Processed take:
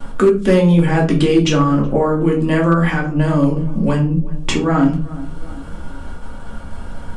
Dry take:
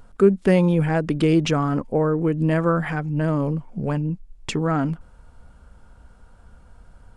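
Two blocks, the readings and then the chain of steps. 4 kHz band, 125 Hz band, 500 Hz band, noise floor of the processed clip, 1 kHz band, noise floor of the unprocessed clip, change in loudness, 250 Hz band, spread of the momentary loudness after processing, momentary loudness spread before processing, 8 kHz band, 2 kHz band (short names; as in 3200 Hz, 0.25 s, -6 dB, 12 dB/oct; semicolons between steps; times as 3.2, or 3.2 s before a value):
+8.5 dB, +6.0 dB, +5.0 dB, -30 dBFS, +6.5 dB, -50 dBFS, +6.0 dB, +6.5 dB, 21 LU, 9 LU, +8.0 dB, +7.0 dB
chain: dynamic EQ 6600 Hz, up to +7 dB, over -51 dBFS, Q 0.95; on a send: tape echo 0.37 s, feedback 43%, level -23.5 dB, low-pass 1100 Hz; on the sum: expander -45 dBFS; in parallel at +2 dB: compressor 10:1, threshold -32 dBFS, peak gain reduction 22 dB; on the sum: bell 3200 Hz +5.5 dB 0.31 oct; shoebox room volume 210 m³, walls furnished, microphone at 2.4 m; overloaded stage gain 3 dB; three-band squash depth 40%; gain -1 dB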